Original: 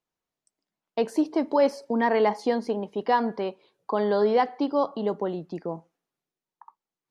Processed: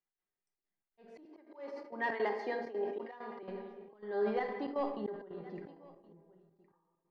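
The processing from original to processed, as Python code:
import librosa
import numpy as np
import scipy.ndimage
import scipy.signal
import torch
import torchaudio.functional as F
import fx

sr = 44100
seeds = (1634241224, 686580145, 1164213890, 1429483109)

y = fx.peak_eq(x, sr, hz=1900.0, db=8.0, octaves=0.42)
y = np.clip(10.0 ** (14.0 / 20.0) * y, -1.0, 1.0) / 10.0 ** (14.0 / 20.0)
y = scipy.signal.sosfilt(scipy.signal.butter(2, 3300.0, 'lowpass', fs=sr, output='sos'), y)
y = fx.comb_fb(y, sr, f0_hz=400.0, decay_s=0.27, harmonics='all', damping=0.0, mix_pct=80)
y = fx.room_shoebox(y, sr, seeds[0], volume_m3=1200.0, walls='mixed', distance_m=1.0)
y = fx.auto_swell(y, sr, attack_ms=579.0)
y = fx.highpass(y, sr, hz=270.0, slope=24, at=(1.25, 3.43))
y = y + 10.0 ** (-23.0 / 20.0) * np.pad(y, (int(1064 * sr / 1000.0), 0))[:len(y)]
y = fx.step_gate(y, sr, bpm=164, pattern='x.xxxx.xx.xxxx', floor_db=-12.0, edge_ms=4.5)
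y = fx.sustainer(y, sr, db_per_s=77.0)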